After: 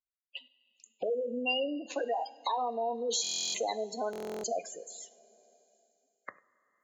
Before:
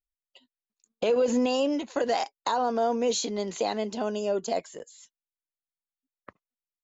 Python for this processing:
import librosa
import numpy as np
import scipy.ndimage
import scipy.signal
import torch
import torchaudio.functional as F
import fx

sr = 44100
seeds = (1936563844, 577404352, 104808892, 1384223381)

p1 = x + 10.0 ** (-24.0 / 20.0) * np.pad(x, (int(97 * sr / 1000.0), 0))[:len(x)]
p2 = fx.spec_gate(p1, sr, threshold_db=-15, keep='strong')
p3 = fx.highpass(p2, sr, hz=620.0, slope=6)
p4 = fx.peak_eq(p3, sr, hz=2600.0, db=13.5, octaves=0.53)
p5 = fx.rev_double_slope(p4, sr, seeds[0], early_s=0.34, late_s=2.5, knee_db=-18, drr_db=12.0)
p6 = fx.rider(p5, sr, range_db=10, speed_s=0.5)
p7 = p5 + F.gain(torch.from_numpy(p6), -2.0).numpy()
p8 = fx.high_shelf(p7, sr, hz=5400.0, db=9.5)
p9 = fx.buffer_glitch(p8, sr, at_s=(3.22, 4.11), block=1024, repeats=13)
p10 = fx.band_squash(p9, sr, depth_pct=40)
y = F.gain(torch.from_numpy(p10), -8.0).numpy()